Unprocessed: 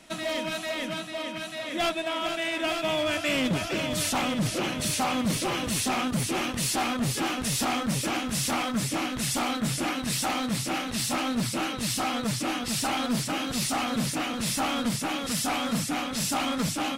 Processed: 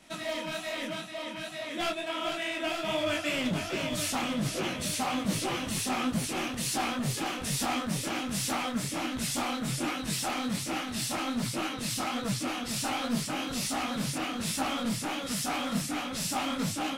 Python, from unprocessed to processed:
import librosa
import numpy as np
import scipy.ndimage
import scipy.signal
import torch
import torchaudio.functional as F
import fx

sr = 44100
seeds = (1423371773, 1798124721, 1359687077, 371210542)

y = fx.detune_double(x, sr, cents=45)